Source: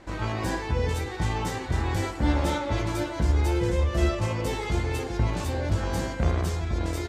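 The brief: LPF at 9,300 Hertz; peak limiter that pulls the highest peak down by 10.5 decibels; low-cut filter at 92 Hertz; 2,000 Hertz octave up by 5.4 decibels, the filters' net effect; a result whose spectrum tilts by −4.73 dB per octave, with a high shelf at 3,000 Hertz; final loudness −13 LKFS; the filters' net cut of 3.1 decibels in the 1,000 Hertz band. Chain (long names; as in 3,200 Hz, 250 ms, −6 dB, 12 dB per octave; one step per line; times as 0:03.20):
high-pass filter 92 Hz
low-pass filter 9,300 Hz
parametric band 1,000 Hz −6 dB
parametric band 2,000 Hz +6.5 dB
high-shelf EQ 3,000 Hz +4.5 dB
level +17.5 dB
brickwall limiter −3.5 dBFS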